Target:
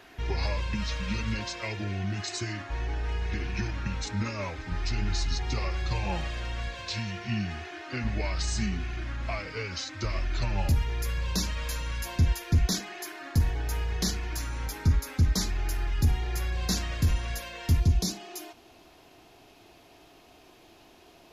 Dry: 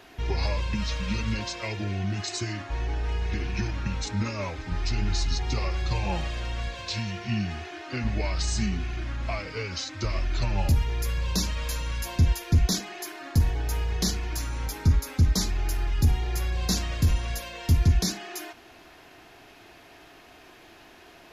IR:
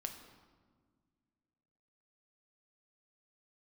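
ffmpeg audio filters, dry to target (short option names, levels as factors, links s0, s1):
-af "asetnsamples=n=441:p=0,asendcmd='17.8 equalizer g -9',equalizer=f=1700:w=1.5:g=3,volume=0.75"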